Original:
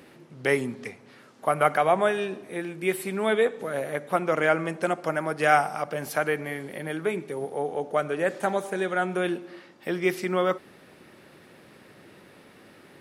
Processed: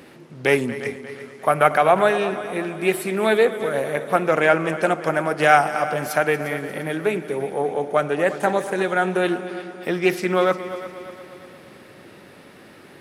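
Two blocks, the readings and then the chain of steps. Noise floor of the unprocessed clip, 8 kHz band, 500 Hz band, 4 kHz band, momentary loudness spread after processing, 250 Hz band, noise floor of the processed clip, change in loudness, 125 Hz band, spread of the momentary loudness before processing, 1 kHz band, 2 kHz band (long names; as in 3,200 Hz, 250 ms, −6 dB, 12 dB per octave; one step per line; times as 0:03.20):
−53 dBFS, +4.5 dB, +6.0 dB, +6.0 dB, 13 LU, +5.5 dB, −46 dBFS, +5.5 dB, +5.5 dB, 12 LU, +6.0 dB, +6.0 dB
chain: echo machine with several playback heads 117 ms, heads second and third, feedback 52%, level −15 dB
highs frequency-modulated by the lows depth 0.1 ms
level +5.5 dB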